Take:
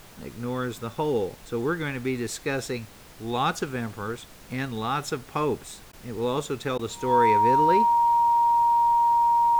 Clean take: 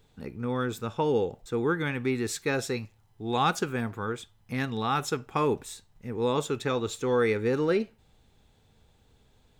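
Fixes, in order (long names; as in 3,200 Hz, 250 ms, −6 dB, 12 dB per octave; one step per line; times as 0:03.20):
notch filter 940 Hz, Q 30
repair the gap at 0:05.92/0:06.78, 10 ms
broadband denoise 16 dB, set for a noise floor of −47 dBFS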